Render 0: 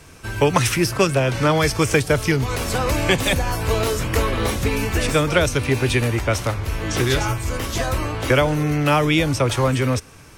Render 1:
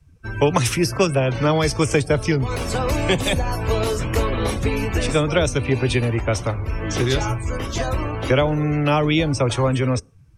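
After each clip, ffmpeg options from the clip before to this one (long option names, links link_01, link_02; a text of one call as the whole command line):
ffmpeg -i in.wav -filter_complex "[0:a]afftdn=noise_reduction=25:noise_floor=-34,acrossover=split=200|1300|2200[link_01][link_02][link_03][link_04];[link_03]acompressor=threshold=-40dB:ratio=6[link_05];[link_01][link_02][link_05][link_04]amix=inputs=4:normalize=0" out.wav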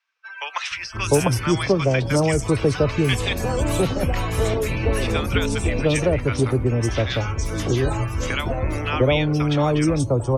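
ffmpeg -i in.wav -filter_complex "[0:a]acrossover=split=1000|5000[link_01][link_02][link_03];[link_03]adelay=480[link_04];[link_01]adelay=700[link_05];[link_05][link_02][link_04]amix=inputs=3:normalize=0" out.wav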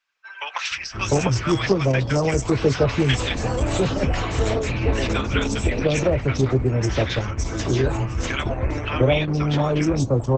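ffmpeg -i in.wav -filter_complex "[0:a]asplit=2[link_01][link_02];[link_02]adelay=15,volume=-11dB[link_03];[link_01][link_03]amix=inputs=2:normalize=0" -ar 48000 -c:a libopus -b:a 10k out.opus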